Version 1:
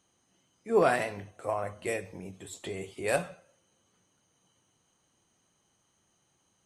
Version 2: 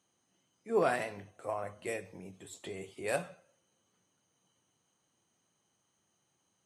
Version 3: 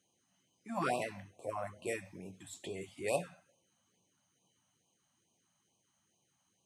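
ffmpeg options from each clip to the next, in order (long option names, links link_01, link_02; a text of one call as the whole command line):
ffmpeg -i in.wav -af "highpass=94,volume=-5dB" out.wav
ffmpeg -i in.wav -af "afftfilt=real='re*(1-between(b*sr/1024,360*pow(1700/360,0.5+0.5*sin(2*PI*2.3*pts/sr))/1.41,360*pow(1700/360,0.5+0.5*sin(2*PI*2.3*pts/sr))*1.41))':imag='im*(1-between(b*sr/1024,360*pow(1700/360,0.5+0.5*sin(2*PI*2.3*pts/sr))/1.41,360*pow(1700/360,0.5+0.5*sin(2*PI*2.3*pts/sr))*1.41))':win_size=1024:overlap=0.75" out.wav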